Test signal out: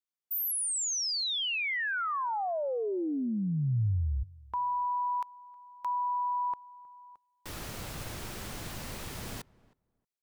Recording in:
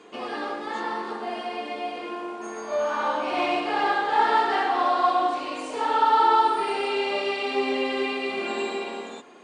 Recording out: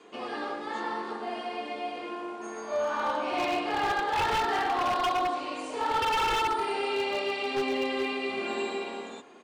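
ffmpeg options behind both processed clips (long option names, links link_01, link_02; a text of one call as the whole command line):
ffmpeg -i in.wav -filter_complex "[0:a]asplit=2[link_01][link_02];[link_02]adelay=315,lowpass=frequency=1200:poles=1,volume=-22dB,asplit=2[link_03][link_04];[link_04]adelay=315,lowpass=frequency=1200:poles=1,volume=0.17[link_05];[link_01][link_03][link_05]amix=inputs=3:normalize=0,aeval=exprs='0.126*(abs(mod(val(0)/0.126+3,4)-2)-1)':channel_layout=same,adynamicequalizer=threshold=0.00355:dfrequency=110:dqfactor=1.5:tfrequency=110:tqfactor=1.5:attack=5:release=100:ratio=0.375:range=2.5:mode=boostabove:tftype=bell,volume=-3.5dB" out.wav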